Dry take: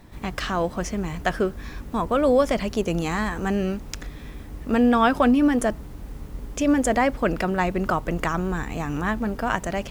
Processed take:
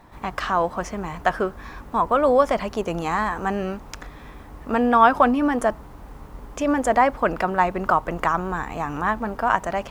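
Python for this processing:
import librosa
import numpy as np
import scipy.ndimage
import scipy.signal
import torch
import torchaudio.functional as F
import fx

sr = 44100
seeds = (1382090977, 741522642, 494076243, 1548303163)

y = fx.peak_eq(x, sr, hz=980.0, db=12.5, octaves=1.7)
y = y * 10.0 ** (-5.0 / 20.0)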